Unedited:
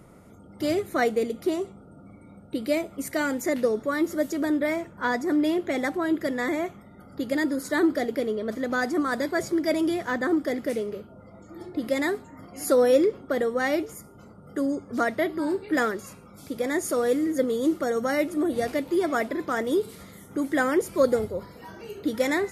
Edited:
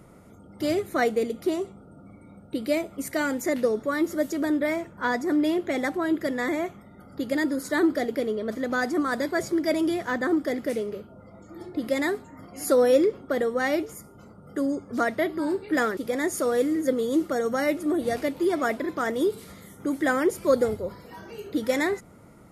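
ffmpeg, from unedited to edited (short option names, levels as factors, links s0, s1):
-filter_complex "[0:a]asplit=2[s0][s1];[s0]atrim=end=15.972[s2];[s1]atrim=start=16.478[s3];[s2][s3]acrossfade=d=0.004:c1=hsin:c2=hsin"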